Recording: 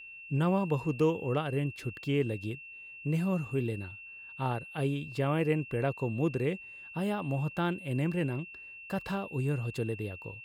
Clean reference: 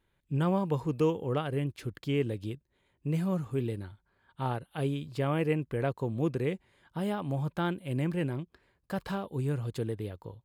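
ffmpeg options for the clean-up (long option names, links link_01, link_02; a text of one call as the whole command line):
ffmpeg -i in.wav -af "bandreject=frequency=2700:width=30" out.wav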